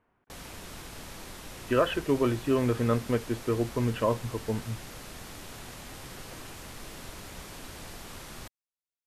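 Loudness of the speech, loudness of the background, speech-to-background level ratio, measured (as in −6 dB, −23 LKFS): −28.5 LKFS, −43.5 LKFS, 15.0 dB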